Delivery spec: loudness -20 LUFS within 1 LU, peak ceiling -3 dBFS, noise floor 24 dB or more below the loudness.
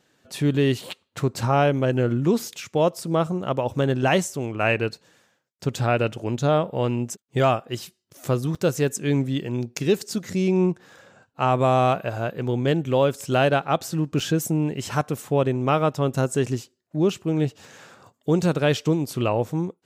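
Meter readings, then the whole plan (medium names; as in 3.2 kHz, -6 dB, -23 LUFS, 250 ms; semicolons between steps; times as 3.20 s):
dropouts 2; longest dropout 4.9 ms; loudness -23.5 LUFS; peak level -9.0 dBFS; loudness target -20.0 LUFS
-> interpolate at 8.55/14.20 s, 4.9 ms; trim +3.5 dB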